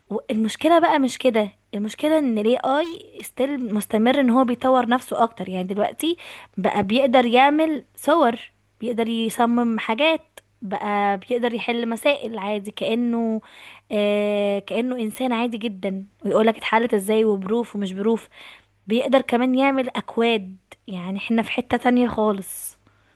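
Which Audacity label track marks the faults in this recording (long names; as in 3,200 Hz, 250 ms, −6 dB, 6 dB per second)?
2.830000	3.290000	clipping −29 dBFS
15.150000	15.150000	click −15 dBFS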